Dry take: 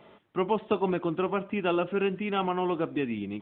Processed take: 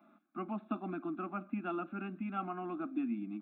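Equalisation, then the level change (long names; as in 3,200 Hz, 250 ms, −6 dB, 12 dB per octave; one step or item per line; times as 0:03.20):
four-pole ladder high-pass 200 Hz, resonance 40%
phaser with its sweep stopped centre 630 Hz, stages 8
phaser with its sweep stopped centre 1,900 Hz, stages 6
+4.5 dB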